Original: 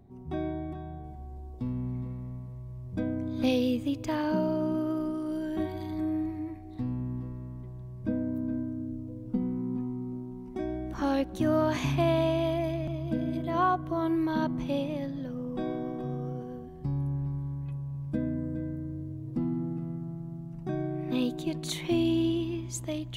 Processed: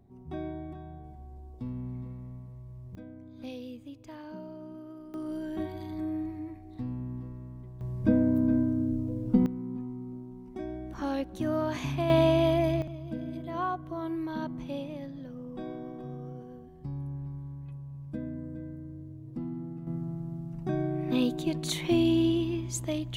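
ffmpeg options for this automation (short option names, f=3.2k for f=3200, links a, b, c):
-af "asetnsamples=n=441:p=0,asendcmd='2.95 volume volume -15dB;5.14 volume volume -3dB;7.81 volume volume 7dB;9.46 volume volume -4dB;12.1 volume volume 4dB;12.82 volume volume -6dB;19.87 volume volume 2dB',volume=-4dB"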